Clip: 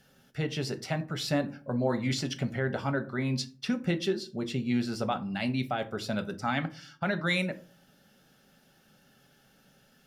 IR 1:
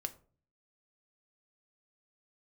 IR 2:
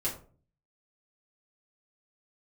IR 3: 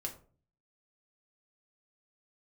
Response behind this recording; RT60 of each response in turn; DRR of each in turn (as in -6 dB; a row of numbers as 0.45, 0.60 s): 1; 0.45, 0.40, 0.40 s; 8.0, -7.5, 0.5 dB